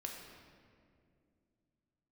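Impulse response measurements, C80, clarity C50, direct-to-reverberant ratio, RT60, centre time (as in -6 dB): 4.0 dB, 2.5 dB, -0.5 dB, 2.3 s, 71 ms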